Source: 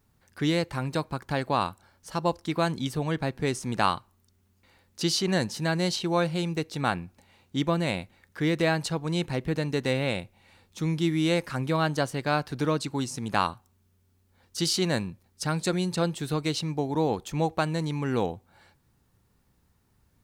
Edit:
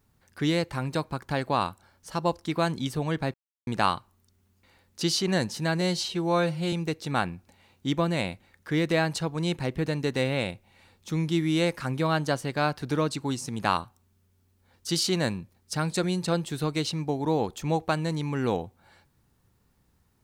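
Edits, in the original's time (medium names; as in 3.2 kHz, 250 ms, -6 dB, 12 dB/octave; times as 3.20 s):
3.34–3.67 s: mute
5.81–6.42 s: stretch 1.5×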